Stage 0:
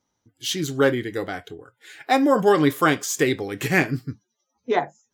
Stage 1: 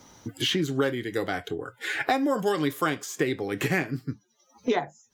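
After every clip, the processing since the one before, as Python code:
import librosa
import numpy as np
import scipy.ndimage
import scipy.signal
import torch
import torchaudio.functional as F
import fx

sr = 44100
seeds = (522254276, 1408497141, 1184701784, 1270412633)

y = fx.band_squash(x, sr, depth_pct=100)
y = y * librosa.db_to_amplitude(-6.5)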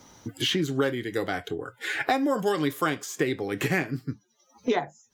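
y = x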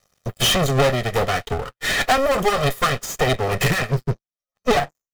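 y = fx.lower_of_two(x, sr, delay_ms=1.6)
y = fx.leveller(y, sr, passes=5)
y = fx.upward_expand(y, sr, threshold_db=-30.0, expansion=2.5)
y = y * librosa.db_to_amplitude(1.5)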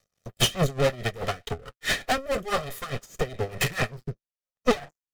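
y = fx.rotary_switch(x, sr, hz=6.3, then_hz=1.0, switch_at_s=1.01)
y = y * 10.0 ** (-19 * (0.5 - 0.5 * np.cos(2.0 * np.pi * 4.7 * np.arange(len(y)) / sr)) / 20.0)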